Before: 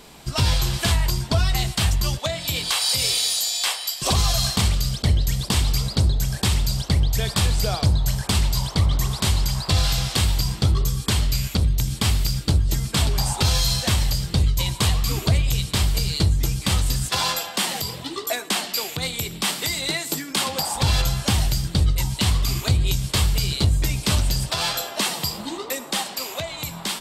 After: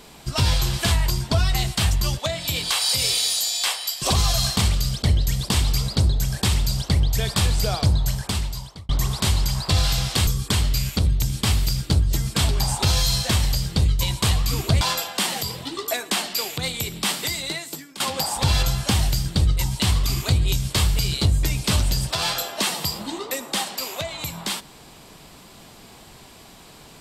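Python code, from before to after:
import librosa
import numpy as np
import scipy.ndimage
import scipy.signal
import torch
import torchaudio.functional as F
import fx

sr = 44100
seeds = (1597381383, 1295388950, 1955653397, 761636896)

y = fx.edit(x, sr, fx.fade_out_span(start_s=7.99, length_s=0.9),
    fx.cut(start_s=10.27, length_s=0.58),
    fx.cut(start_s=15.39, length_s=1.81),
    fx.fade_out_to(start_s=19.56, length_s=0.83, floor_db=-17.0), tone=tone)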